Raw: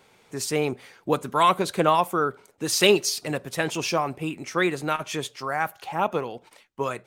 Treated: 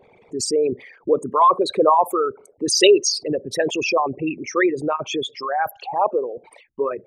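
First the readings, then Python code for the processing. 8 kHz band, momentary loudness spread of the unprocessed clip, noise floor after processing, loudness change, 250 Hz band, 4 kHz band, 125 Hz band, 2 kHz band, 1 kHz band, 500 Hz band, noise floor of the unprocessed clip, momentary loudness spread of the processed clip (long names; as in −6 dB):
+4.0 dB, 11 LU, −55 dBFS, +4.5 dB, +4.0 dB, +3.5 dB, −5.5 dB, +1.0 dB, +4.5 dB, +6.5 dB, −59 dBFS, 11 LU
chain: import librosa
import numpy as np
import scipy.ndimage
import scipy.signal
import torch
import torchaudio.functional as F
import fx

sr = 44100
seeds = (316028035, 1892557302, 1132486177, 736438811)

y = fx.envelope_sharpen(x, sr, power=3.0)
y = fx.peak_eq(y, sr, hz=1400.0, db=-11.5, octaves=0.22)
y = y * 10.0 ** (5.5 / 20.0)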